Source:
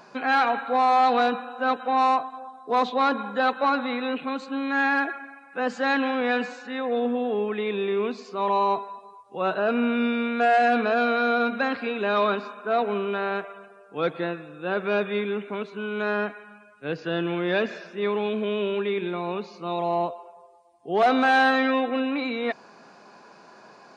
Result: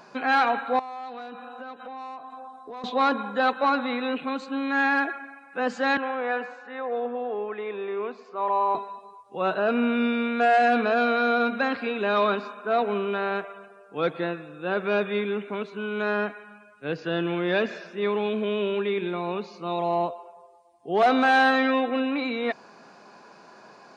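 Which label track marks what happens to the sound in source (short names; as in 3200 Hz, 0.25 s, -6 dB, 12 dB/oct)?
0.790000	2.840000	compressor 5:1, threshold -37 dBFS
5.970000	8.750000	three-band isolator lows -14 dB, under 420 Hz, highs -15 dB, over 2000 Hz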